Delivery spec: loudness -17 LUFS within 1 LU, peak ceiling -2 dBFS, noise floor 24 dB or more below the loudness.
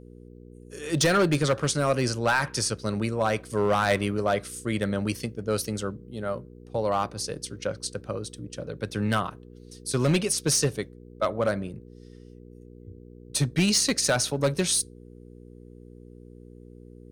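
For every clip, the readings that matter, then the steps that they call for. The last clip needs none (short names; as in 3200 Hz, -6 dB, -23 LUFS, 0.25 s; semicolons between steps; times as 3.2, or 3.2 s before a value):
clipped 0.6%; flat tops at -16.0 dBFS; hum 60 Hz; harmonics up to 480 Hz; hum level -45 dBFS; loudness -26.5 LUFS; peak -16.0 dBFS; loudness target -17.0 LUFS
-> clip repair -16 dBFS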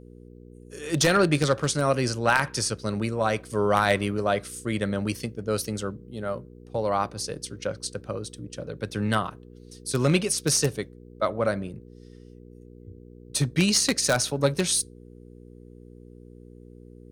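clipped 0.0%; hum 60 Hz; harmonics up to 480 Hz; hum level -44 dBFS
-> de-hum 60 Hz, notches 8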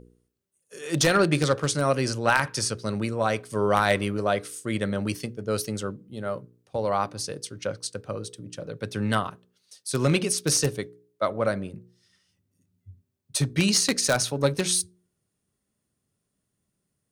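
hum none; loudness -26.0 LUFS; peak -7.0 dBFS; loudness target -17.0 LUFS
-> gain +9 dB; limiter -2 dBFS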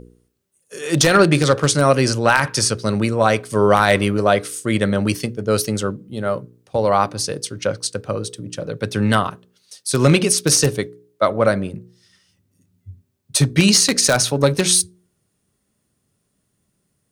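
loudness -17.5 LUFS; peak -2.0 dBFS; noise floor -70 dBFS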